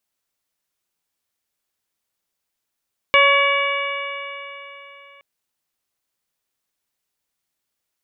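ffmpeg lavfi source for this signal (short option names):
-f lavfi -i "aevalsrc='0.15*pow(10,-3*t/3.45)*sin(2*PI*558.64*t)+0.178*pow(10,-3*t/3.45)*sin(2*PI*1121.12*t)+0.0841*pow(10,-3*t/3.45)*sin(2*PI*1691.24*t)+0.237*pow(10,-3*t/3.45)*sin(2*PI*2272.7*t)+0.106*pow(10,-3*t/3.45)*sin(2*PI*2869.09*t)+0.0376*pow(10,-3*t/3.45)*sin(2*PI*3483.85*t)':d=2.07:s=44100"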